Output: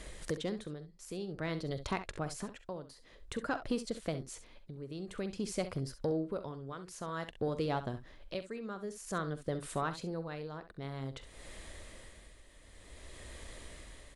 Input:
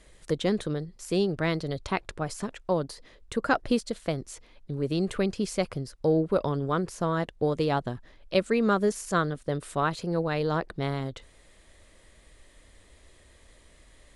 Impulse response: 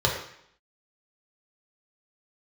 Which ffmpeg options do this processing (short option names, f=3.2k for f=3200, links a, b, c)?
-filter_complex "[0:a]asettb=1/sr,asplit=3[a][b][c];[a]atrim=end=6.724[d];[b]atrim=start=6.72:end=7.3,asetpts=PTS-STARTPTS,afade=t=in:d=0.004:c=qsin,afade=t=out:st=0.576:d=0.004:c=qsin,tiltshelf=f=970:g=-4.5[e];[c]atrim=start=7.296[f];[d][e]acrossfade=d=0.004:c1=hsin:c2=qsin[g];[g][f]acrossfade=d=0.004:c1=qsin:c2=hsin,acompressor=threshold=-52dB:ratio=2,tremolo=f=0.52:d=0.71,asoftclip=type=tanh:threshold=-29dB,asplit=2[h][i];[i]aecho=0:1:44|66:0.141|0.237[j];[h][j]amix=inputs=2:normalize=0,volume=8.5dB"